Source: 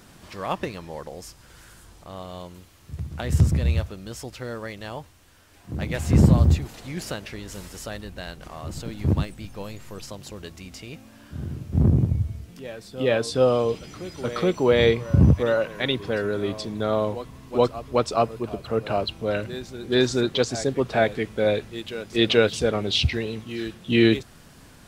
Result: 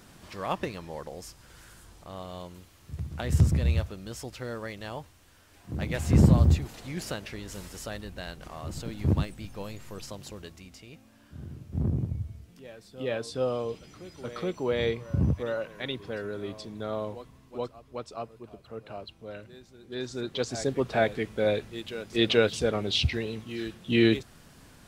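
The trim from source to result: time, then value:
10.26 s -3 dB
10.80 s -9.5 dB
17.21 s -9.5 dB
17.78 s -16 dB
19.95 s -16 dB
20.63 s -4 dB

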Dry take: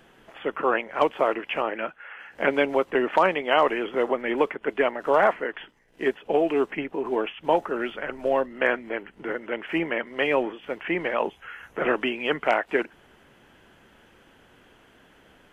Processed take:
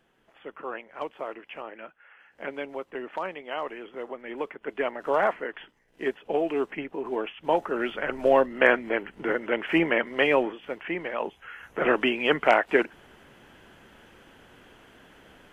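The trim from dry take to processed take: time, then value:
4.17 s -12.5 dB
4.97 s -4 dB
7.33 s -4 dB
8.19 s +3.5 dB
10.07 s +3.5 dB
11.08 s -6 dB
12.08 s +2.5 dB

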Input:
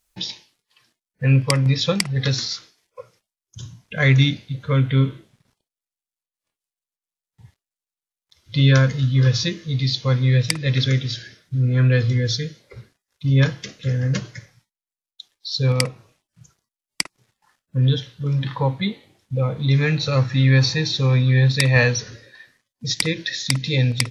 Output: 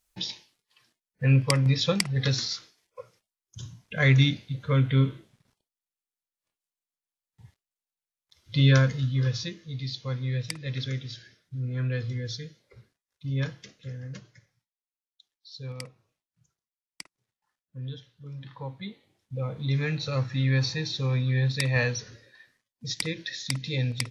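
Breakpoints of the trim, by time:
8.74 s -4.5 dB
9.56 s -12.5 dB
13.55 s -12.5 dB
14.21 s -19 dB
18.34 s -19 dB
19.56 s -9 dB

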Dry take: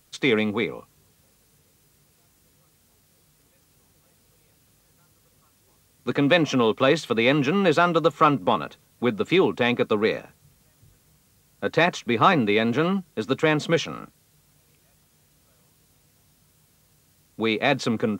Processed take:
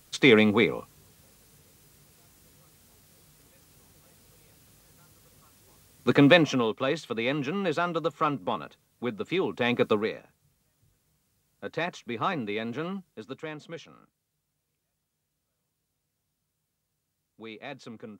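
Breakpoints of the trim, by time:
6.24 s +3 dB
6.74 s -8.5 dB
9.44 s -8.5 dB
9.89 s 0 dB
10.13 s -11 dB
12.98 s -11 dB
13.62 s -19 dB

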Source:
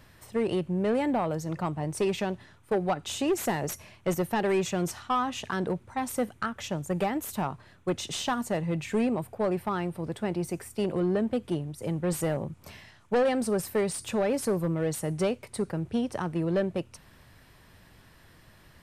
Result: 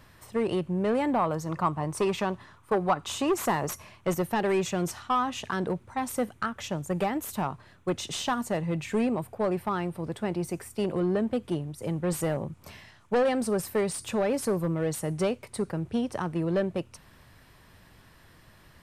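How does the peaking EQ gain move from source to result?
peaking EQ 1.1 kHz 0.54 oct
0.92 s +4 dB
1.37 s +11.5 dB
3.59 s +11.5 dB
4.26 s +2 dB

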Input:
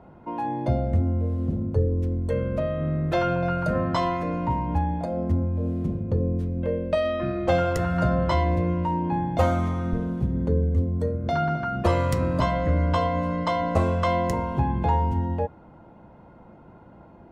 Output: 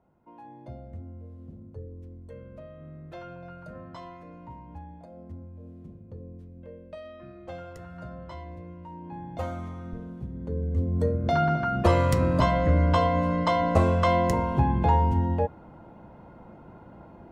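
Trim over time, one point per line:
8.80 s -18.5 dB
9.33 s -11.5 dB
10.39 s -11.5 dB
11.01 s +1 dB

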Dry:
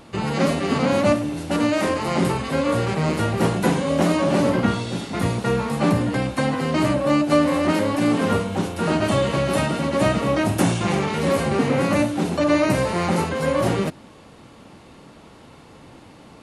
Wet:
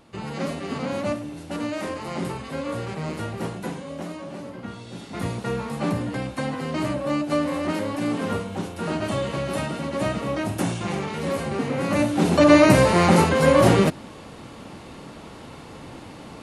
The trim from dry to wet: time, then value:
3.25 s -8.5 dB
4.52 s -18.5 dB
5.20 s -6 dB
11.77 s -6 dB
12.35 s +5 dB

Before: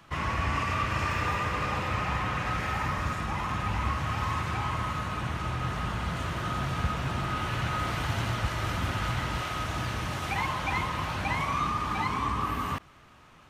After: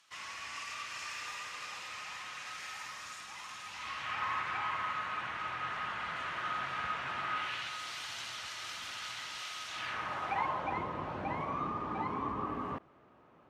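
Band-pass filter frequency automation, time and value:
band-pass filter, Q 0.98
3.69 s 6.3 kHz
4.23 s 1.8 kHz
7.34 s 1.8 kHz
7.77 s 5.1 kHz
9.66 s 5.1 kHz
10.01 s 1.3 kHz
10.86 s 440 Hz

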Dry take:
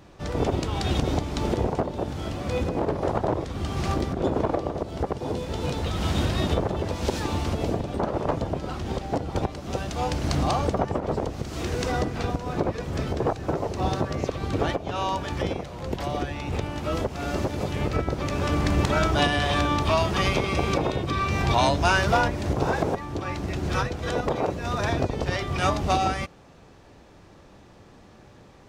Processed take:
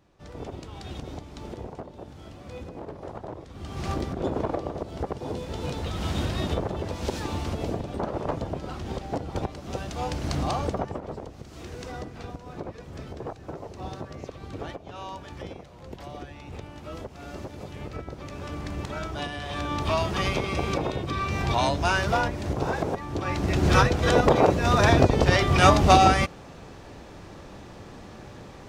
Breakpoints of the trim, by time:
3.44 s -13 dB
3.90 s -3.5 dB
10.72 s -3.5 dB
11.22 s -11 dB
19.43 s -11 dB
19.87 s -3 dB
22.88 s -3 dB
23.68 s +7 dB

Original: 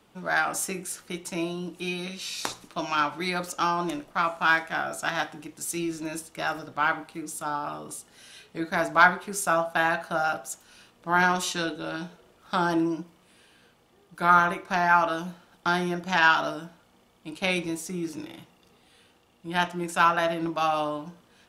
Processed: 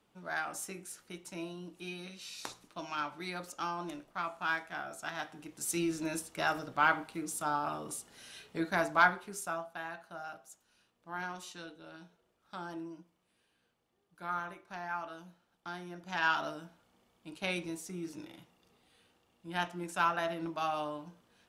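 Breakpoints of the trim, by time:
5.18 s -11.5 dB
5.73 s -2.5 dB
8.57 s -2.5 dB
9.38 s -11 dB
9.79 s -18 dB
15.85 s -18 dB
16.34 s -9 dB

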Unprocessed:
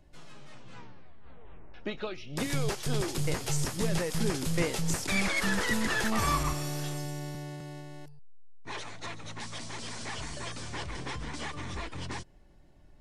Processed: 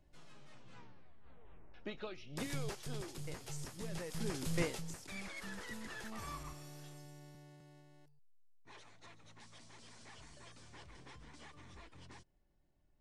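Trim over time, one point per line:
2.45 s -9 dB
3.15 s -15 dB
3.84 s -15 dB
4.62 s -6 dB
4.94 s -18 dB

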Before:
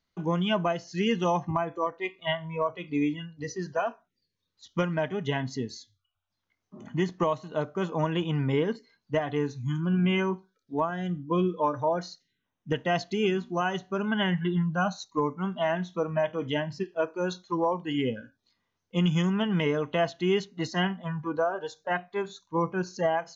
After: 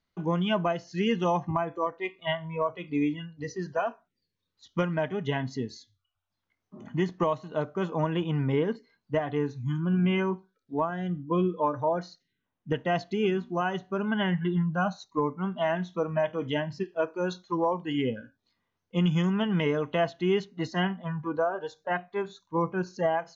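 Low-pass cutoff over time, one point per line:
low-pass 6 dB/octave
4 kHz
from 8.00 s 2.5 kHz
from 15.59 s 5.1 kHz
from 18.06 s 3.3 kHz
from 19.23 s 4.8 kHz
from 20.04 s 3 kHz

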